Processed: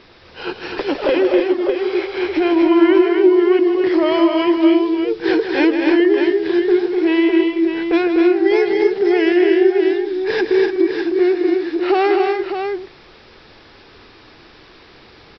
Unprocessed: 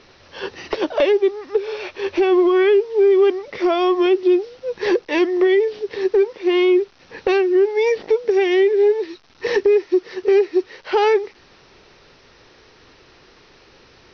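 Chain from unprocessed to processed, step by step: limiter -12 dBFS, peak gain reduction 5 dB; tapped delay 0.145/0.229/0.271/0.554 s -8.5/-4.5/-9.5/-7 dB; speed mistake 48 kHz file played as 44.1 kHz; gain +2.5 dB

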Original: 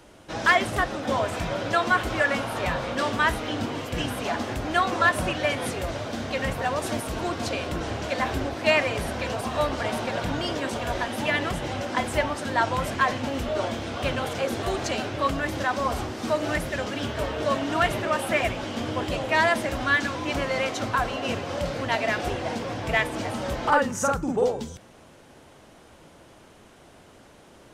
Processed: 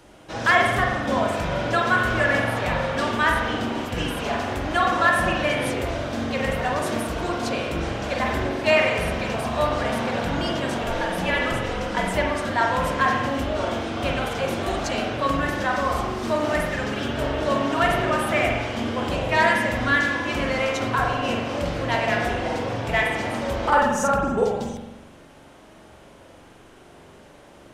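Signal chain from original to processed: 10.82–12.12 frequency shift -45 Hz; spring tank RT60 1.1 s, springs 43 ms, chirp 70 ms, DRR 0 dB

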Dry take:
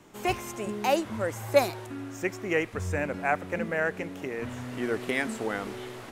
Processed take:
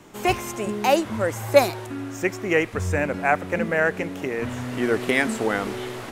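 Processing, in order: in parallel at 0 dB: vocal rider within 5 dB 2 s

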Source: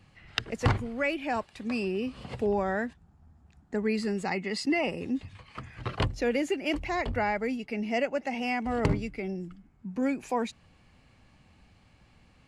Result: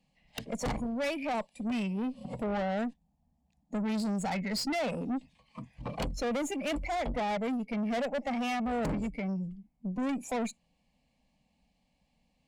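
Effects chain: fixed phaser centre 370 Hz, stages 6; spectral noise reduction 16 dB; tube stage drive 36 dB, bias 0.3; gain +7 dB

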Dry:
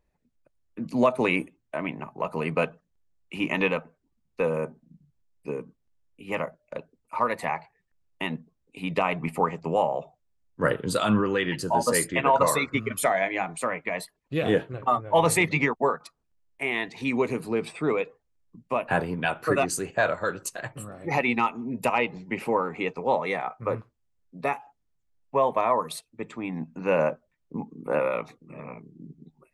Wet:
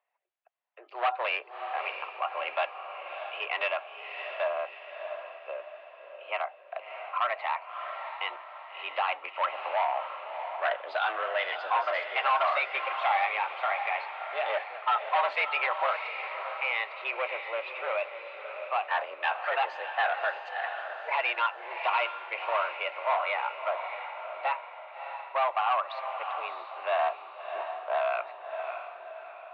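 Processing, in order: hard clip -21 dBFS, distortion -10 dB; mistuned SSB +120 Hz 510–3300 Hz; on a send: diffused feedback echo 0.638 s, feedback 46%, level -7.5 dB

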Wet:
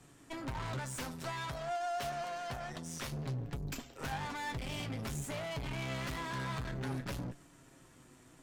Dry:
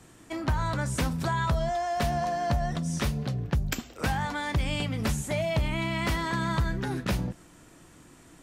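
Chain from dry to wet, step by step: 0.79–3.12 low shelf 260 Hz -12 dB; tube stage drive 35 dB, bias 0.8; flange 0.55 Hz, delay 7 ms, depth 1 ms, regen +48%; gain +2.5 dB

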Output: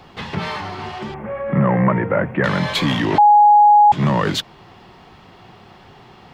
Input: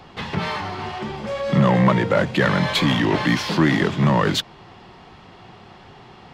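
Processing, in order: 1.14–2.44 steep low-pass 2200 Hz 36 dB/oct; requantised 12-bit, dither none; 3.18–3.92 bleep 832 Hz -6.5 dBFS

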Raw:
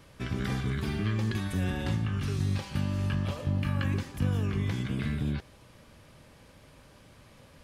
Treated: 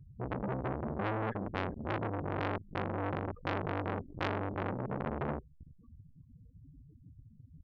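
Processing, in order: loudest bins only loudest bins 4; brick-wall FIR band-stop 480–1100 Hz; frequency-shifting echo 0.386 s, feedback 31%, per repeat -74 Hz, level -21 dB; reverb removal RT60 0.75 s; core saturation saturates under 1800 Hz; gain +6.5 dB

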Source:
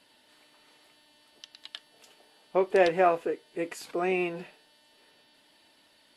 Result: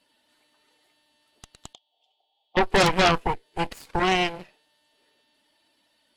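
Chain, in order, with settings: bin magnitudes rounded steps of 15 dB; added harmonics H 7 -24 dB, 8 -6 dB, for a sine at -11 dBFS; 1.73–2.57 double band-pass 1600 Hz, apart 2.1 oct

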